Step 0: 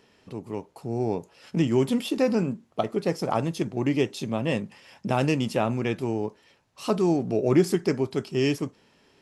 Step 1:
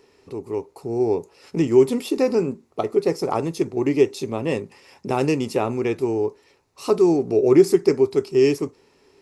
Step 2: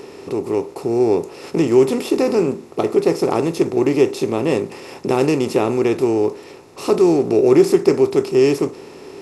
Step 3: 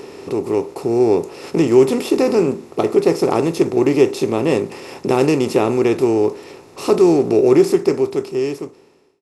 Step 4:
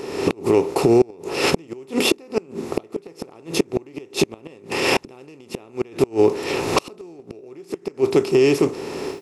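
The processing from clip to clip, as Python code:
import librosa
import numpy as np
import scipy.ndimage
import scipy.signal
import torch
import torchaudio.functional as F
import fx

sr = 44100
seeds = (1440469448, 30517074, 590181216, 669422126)

y1 = fx.graphic_eq_31(x, sr, hz=(125, 200, 400, 630, 1600, 3150), db=(-6, -11, 8, -5, -7, -9))
y1 = y1 * librosa.db_to_amplitude(3.5)
y2 = fx.bin_compress(y1, sr, power=0.6)
y3 = fx.fade_out_tail(y2, sr, length_s=1.96)
y3 = y3 * librosa.db_to_amplitude(1.5)
y4 = fx.recorder_agc(y3, sr, target_db=-9.5, rise_db_per_s=46.0, max_gain_db=30)
y4 = fx.dynamic_eq(y4, sr, hz=2800.0, q=1.6, threshold_db=-39.0, ratio=4.0, max_db=5)
y4 = fx.gate_flip(y4, sr, shuts_db=-6.0, range_db=-30)
y4 = y4 * librosa.db_to_amplitude(1.5)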